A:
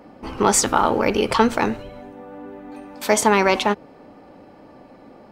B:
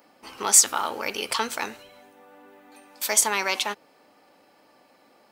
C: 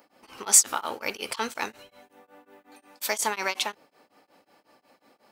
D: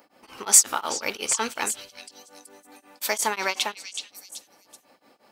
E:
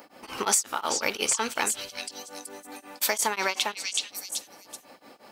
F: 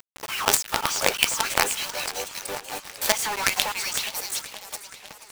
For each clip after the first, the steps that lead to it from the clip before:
tilt +4.5 dB/oct; gain -9 dB
beating tremolo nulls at 5.5 Hz
delay with a stepping band-pass 0.377 s, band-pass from 3900 Hz, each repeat 0.7 oct, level -6.5 dB; gain +2 dB
compressor 6:1, threshold -30 dBFS, peak gain reduction 19 dB; gain +7.5 dB
LFO high-pass sine 3.5 Hz 430–2300 Hz; companded quantiser 2-bit; warbling echo 0.486 s, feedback 60%, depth 137 cents, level -14.5 dB; gain -1.5 dB

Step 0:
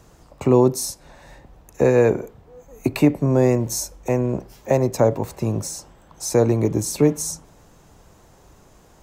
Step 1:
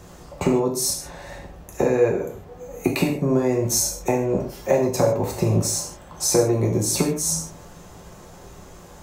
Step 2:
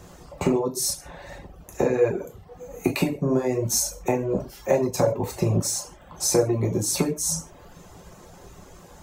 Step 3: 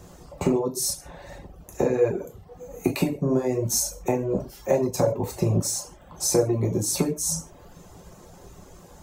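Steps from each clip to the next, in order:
compressor 10:1, threshold -23 dBFS, peak gain reduction 14 dB; non-linear reverb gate 0.18 s falling, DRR -1 dB; gain +4.5 dB
reverb removal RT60 0.6 s; gain -1.5 dB
bell 2000 Hz -4 dB 2.3 oct

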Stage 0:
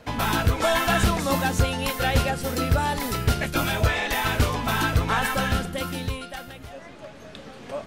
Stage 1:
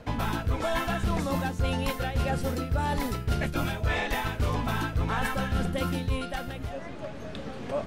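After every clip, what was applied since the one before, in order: tilt -1.5 dB/oct; reverse; compressor 10:1, threshold -26 dBFS, peak gain reduction 16 dB; reverse; gain +2 dB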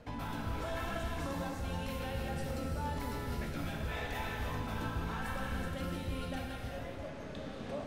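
limiter -24 dBFS, peak gain reduction 8.5 dB; non-linear reverb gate 0.43 s flat, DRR -0.5 dB; gain -8.5 dB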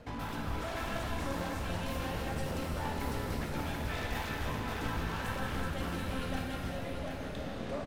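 one-sided fold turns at -36.5 dBFS; echo 0.737 s -6 dB; gain +2.5 dB

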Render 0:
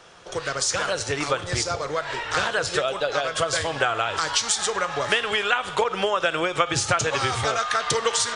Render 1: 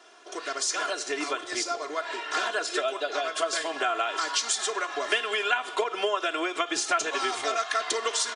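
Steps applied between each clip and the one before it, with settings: HPF 250 Hz 24 dB/oct; comb 2.9 ms, depth 89%; gain -6.5 dB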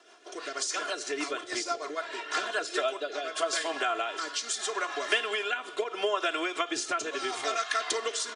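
rotary speaker horn 6.3 Hz, later 0.75 Hz, at 2.2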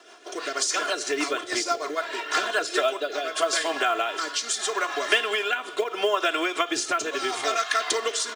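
in parallel at -1.5 dB: vocal rider within 4 dB 2 s; on the sum: short-mantissa float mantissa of 4-bit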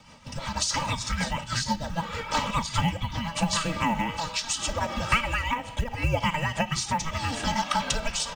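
frequency shift -480 Hz; gain -1.5 dB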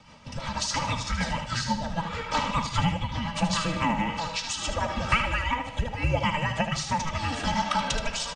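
air absorption 56 m; feedback echo 76 ms, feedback 38%, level -8.5 dB

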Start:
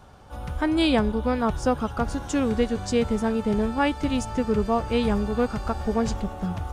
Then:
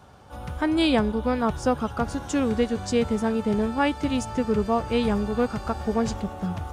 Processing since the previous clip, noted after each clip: HPF 65 Hz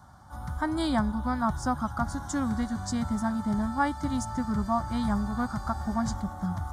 fixed phaser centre 1100 Hz, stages 4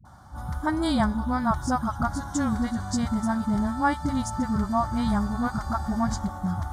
dispersion highs, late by 52 ms, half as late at 420 Hz; gain +3 dB

